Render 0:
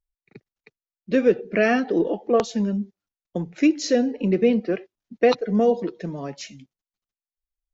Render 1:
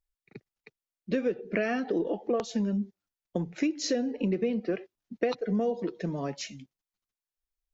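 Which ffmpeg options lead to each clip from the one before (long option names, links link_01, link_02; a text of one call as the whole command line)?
ffmpeg -i in.wav -af "acompressor=threshold=-24dB:ratio=6,volume=-1dB" out.wav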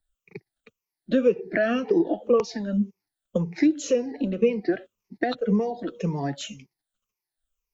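ffmpeg -i in.wav -filter_complex "[0:a]afftfilt=real='re*pow(10,16/40*sin(2*PI*(0.8*log(max(b,1)*sr/1024/100)/log(2)-(-1.9)*(pts-256)/sr)))':imag='im*pow(10,16/40*sin(2*PI*(0.8*log(max(b,1)*sr/1024/100)/log(2)-(-1.9)*(pts-256)/sr)))':win_size=1024:overlap=0.75,acrossover=split=220|3300[link_01][link_02][link_03];[link_03]alimiter=level_in=5dB:limit=-24dB:level=0:latency=1:release=267,volume=-5dB[link_04];[link_01][link_02][link_04]amix=inputs=3:normalize=0,volume=2dB" out.wav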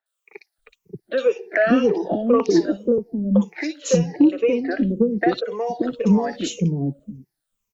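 ffmpeg -i in.wav -filter_complex "[0:a]acrossover=split=450|2900[link_01][link_02][link_03];[link_03]adelay=60[link_04];[link_01]adelay=580[link_05];[link_05][link_02][link_04]amix=inputs=3:normalize=0,acontrast=85" out.wav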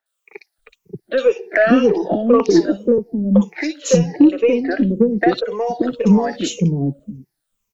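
ffmpeg -i in.wav -af "aeval=exprs='0.562*(cos(1*acos(clip(val(0)/0.562,-1,1)))-cos(1*PI/2))+0.00355*(cos(8*acos(clip(val(0)/0.562,-1,1)))-cos(8*PI/2))':channel_layout=same,volume=4dB" out.wav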